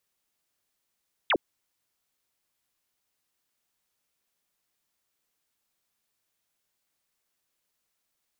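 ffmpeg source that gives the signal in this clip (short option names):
-f lavfi -i "aevalsrc='0.1*clip(t/0.002,0,1)*clip((0.06-t)/0.002,0,1)*sin(2*PI*3900*0.06/log(260/3900)*(exp(log(260/3900)*t/0.06)-1))':d=0.06:s=44100"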